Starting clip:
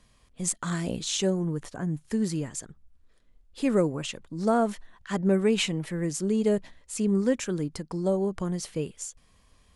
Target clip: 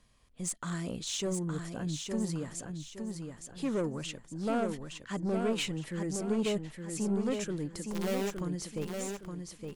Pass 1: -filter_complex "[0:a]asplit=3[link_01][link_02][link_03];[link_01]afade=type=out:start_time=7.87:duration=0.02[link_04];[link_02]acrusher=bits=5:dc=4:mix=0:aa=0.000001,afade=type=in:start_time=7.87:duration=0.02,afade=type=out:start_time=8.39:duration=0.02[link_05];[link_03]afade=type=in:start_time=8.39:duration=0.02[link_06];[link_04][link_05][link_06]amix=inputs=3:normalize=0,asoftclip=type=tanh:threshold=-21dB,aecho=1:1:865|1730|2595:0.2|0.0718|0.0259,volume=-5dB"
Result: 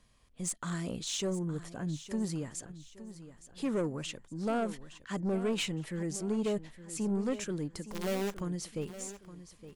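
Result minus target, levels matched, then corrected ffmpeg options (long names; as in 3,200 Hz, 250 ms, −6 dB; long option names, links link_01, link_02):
echo-to-direct −8.5 dB
-filter_complex "[0:a]asplit=3[link_01][link_02][link_03];[link_01]afade=type=out:start_time=7.87:duration=0.02[link_04];[link_02]acrusher=bits=5:dc=4:mix=0:aa=0.000001,afade=type=in:start_time=7.87:duration=0.02,afade=type=out:start_time=8.39:duration=0.02[link_05];[link_03]afade=type=in:start_time=8.39:duration=0.02[link_06];[link_04][link_05][link_06]amix=inputs=3:normalize=0,asoftclip=type=tanh:threshold=-21dB,aecho=1:1:865|1730|2595|3460:0.531|0.191|0.0688|0.0248,volume=-5dB"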